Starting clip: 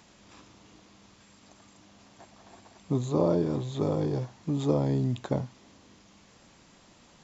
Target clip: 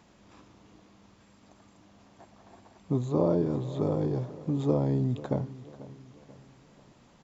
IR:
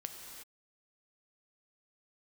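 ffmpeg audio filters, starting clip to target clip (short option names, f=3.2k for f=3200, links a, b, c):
-af "highshelf=f=2k:g=-9,aecho=1:1:489|978|1467|1956:0.141|0.0622|0.0273|0.012"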